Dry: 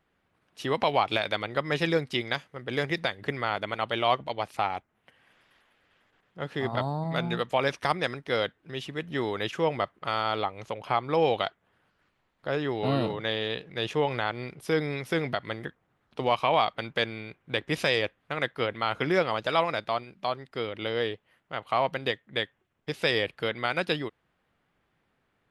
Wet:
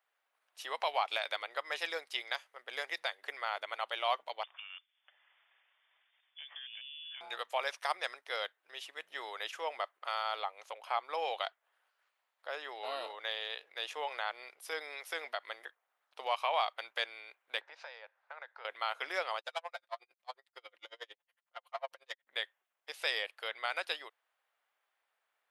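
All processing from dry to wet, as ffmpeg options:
ffmpeg -i in.wav -filter_complex "[0:a]asettb=1/sr,asplit=3[link_01][link_02][link_03];[link_01]atrim=end=4.434[link_04];[link_02]atrim=start=4.43:end=7.21,asetpts=PTS-STARTPTS,afade=type=in:duration=0.004:curve=qsin,afade=type=out:start_time=2.776:duration=0.004:curve=qsin,acompressor=threshold=-36dB:ratio=12:attack=3.2:release=140:knee=1:detection=peak,asoftclip=type=hard:threshold=-31dB,lowpass=frequency=3100:width_type=q:width=0.5098,lowpass=frequency=3100:width_type=q:width=0.6013,lowpass=frequency=3100:width_type=q:width=0.9,lowpass=frequency=3100:width_type=q:width=2.563,afreqshift=-3600[link_05];[link_03]atrim=start=7.206[link_06];[link_04][link_05]acrossfade=duration=0.004:curve1=hsin:curve2=qsin[link_07];[link_07][link_06]acrossfade=duration=0.004:curve1=qsin:curve2=hsin,asettb=1/sr,asplit=3[link_08][link_09][link_10];[link_08]atrim=end=17.614[link_11];[link_09]atrim=start=17.61:end=18.65,asetpts=PTS-STARTPTS,afade=type=in:duration=0.004:curve=qsin,afade=type=out:start_time=1.036:duration=0.004:curve=qsin,acompressor=threshold=-44dB:ratio=3:attack=3.2:release=140:knee=1:detection=peak,highpass=frequency=310:width=0.5412,highpass=frequency=310:width=1.3066,equalizer=frequency=570:width_type=q:width=4:gain=5,equalizer=frequency=880:width_type=q:width=4:gain=10,equalizer=frequency=1500:width_type=q:width=4:gain=8,equalizer=frequency=3100:width_type=q:width=4:gain=-7,lowpass=frequency=5100:width=0.5412,lowpass=frequency=5100:width=1.3066[link_12];[link_10]atrim=start=18.646[link_13];[link_11][link_12]acrossfade=duration=0.004:curve1=hsin:curve2=qsin[link_14];[link_14][link_13]acrossfade=duration=0.004:curve1=qsin:curve2=hsin,asettb=1/sr,asplit=3[link_15][link_16][link_17];[link_15]atrim=end=19.394[link_18];[link_16]atrim=start=19.39:end=22.27,asetpts=PTS-STARTPTS,afade=type=in:duration=0.004:curve=qsin,afade=type=out:start_time=2.876:duration=0.004:curve=qsin,aecho=1:1:5.7:0.66,atrim=end_sample=127008,aeval=exprs='(tanh(7.08*val(0)+0.5)-tanh(0.5))/7.08':channel_layout=same,aeval=exprs='val(0)*pow(10,-39*(0.5-0.5*cos(2*PI*11*n/s))/20)':channel_layout=same[link_19];[link_17]atrim=start=22.266[link_20];[link_18][link_19]acrossfade=duration=0.004:curve1=hsin:curve2=qsin[link_21];[link_21][link_20]acrossfade=duration=0.004:curve1=qsin:curve2=hsin,highpass=frequency=610:width=0.5412,highpass=frequency=610:width=1.3066,highshelf=frequency=8200:gain=9.5,volume=-7dB" out.wav

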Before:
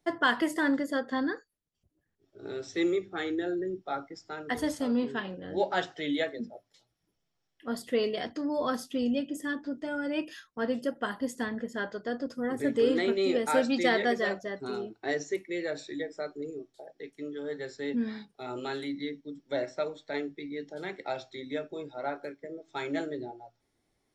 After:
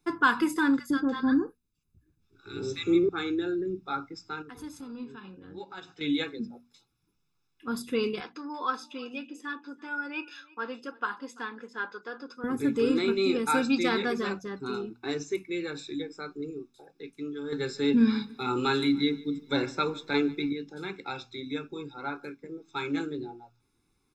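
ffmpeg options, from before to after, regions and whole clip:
ffmpeg -i in.wav -filter_complex "[0:a]asettb=1/sr,asplit=3[link_01][link_02][link_03];[link_01]atrim=end=0.794[link_04];[link_02]atrim=start=0.79:end=3.09,asetpts=PTS-STARTPTS,afade=type=in:duration=0.004:curve=qsin,afade=type=out:start_time=2.296:duration=0.004:curve=qsin,lowshelf=frequency=290:gain=7,acrossover=split=1000[link_05][link_06];[link_05]adelay=110[link_07];[link_07][link_06]amix=inputs=2:normalize=0,atrim=end_sample=101430[link_08];[link_03]atrim=start=3.086[link_09];[link_04][link_08]acrossfade=duration=0.004:curve1=hsin:curve2=qsin[link_10];[link_10][link_09]acrossfade=duration=0.004:curve1=qsin:curve2=hsin,asettb=1/sr,asplit=3[link_11][link_12][link_13];[link_11]atrim=end=4.424[link_14];[link_12]atrim=start=4.42:end=6.01,asetpts=PTS-STARTPTS,afade=type=in:duration=0.004:curve=qsin,afade=type=out:start_time=1.586:duration=0.004:curve=qsin,acompressor=threshold=-38dB:ratio=3:attack=3.2:release=140:knee=1:detection=peak,agate=range=-6dB:threshold=-38dB:ratio=16:release=100:detection=peak[link_15];[link_13]atrim=start=6.006[link_16];[link_14][link_15]acrossfade=duration=0.004:curve1=hsin:curve2=qsin[link_17];[link_17][link_16]acrossfade=duration=0.004:curve1=qsin:curve2=hsin,asettb=1/sr,asplit=3[link_18][link_19][link_20];[link_18]atrim=end=8.204[link_21];[link_19]atrim=start=8.2:end=12.44,asetpts=PTS-STARTPTS,afade=type=in:duration=0.004:curve=qsin,afade=type=out:start_time=4.236:duration=0.004:curve=qsin,highpass=530,lowpass=4500,aecho=1:1:337:0.0668,atrim=end_sample=186984[link_22];[link_20]atrim=start=12.436[link_23];[link_21][link_22]acrossfade=duration=0.004:curve1=hsin:curve2=qsin[link_24];[link_24][link_23]acrossfade=duration=0.004:curve1=qsin:curve2=hsin,asettb=1/sr,asplit=3[link_25][link_26][link_27];[link_25]atrim=end=17.524[link_28];[link_26]atrim=start=17.52:end=20.53,asetpts=PTS-STARTPTS,afade=type=in:duration=0.004:curve=qsin,afade=type=out:start_time=3.006:duration=0.004:curve=qsin,acontrast=81,aecho=1:1:146|292|438:0.0794|0.0397|0.0199,atrim=end_sample=132741[link_29];[link_27]atrim=start=20.526[link_30];[link_28][link_29]acrossfade=duration=0.004:curve1=hsin:curve2=qsin[link_31];[link_31][link_30]acrossfade=duration=0.004:curve1=qsin:curve2=hsin,bandreject=frequency=60:width_type=h:width=6,bandreject=frequency=120:width_type=h:width=6,bandreject=frequency=180:width_type=h:width=6,bandreject=frequency=240:width_type=h:width=6,aecho=1:1:0.8:0.96" out.wav

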